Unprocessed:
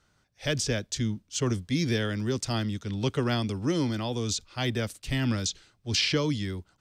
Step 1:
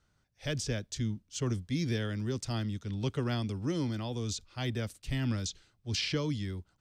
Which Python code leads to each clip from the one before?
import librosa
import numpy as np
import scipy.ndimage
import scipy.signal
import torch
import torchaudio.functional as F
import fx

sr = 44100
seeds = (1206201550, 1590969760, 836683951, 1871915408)

y = fx.low_shelf(x, sr, hz=170.0, db=6.5)
y = y * 10.0 ** (-7.5 / 20.0)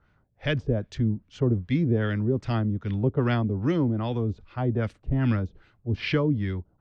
y = fx.filter_lfo_lowpass(x, sr, shape='sine', hz=2.5, low_hz=480.0, high_hz=2500.0, q=1.2)
y = y * 10.0 ** (8.0 / 20.0)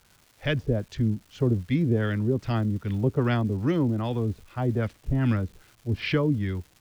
y = fx.dmg_crackle(x, sr, seeds[0], per_s=550.0, level_db=-45.0)